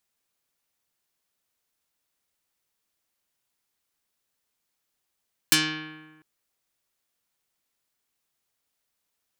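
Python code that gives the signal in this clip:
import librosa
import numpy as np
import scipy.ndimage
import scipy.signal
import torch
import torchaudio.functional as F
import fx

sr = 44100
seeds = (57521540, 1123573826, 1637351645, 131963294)

y = fx.pluck(sr, length_s=0.7, note=51, decay_s=1.33, pick=0.24, brightness='dark')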